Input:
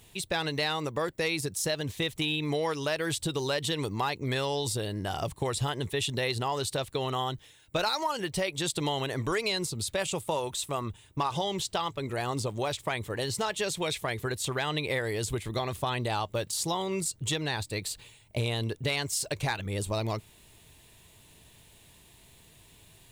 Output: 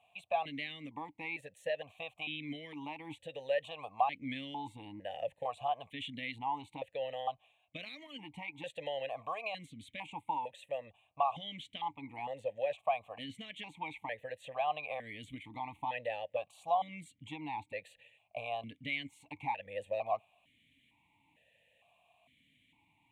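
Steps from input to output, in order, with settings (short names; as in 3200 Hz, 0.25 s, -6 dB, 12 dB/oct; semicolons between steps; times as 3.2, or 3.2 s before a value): dynamic EQ 770 Hz, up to +4 dB, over -39 dBFS, Q 0.75; fixed phaser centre 1400 Hz, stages 6; vowel sequencer 2.2 Hz; gain +5 dB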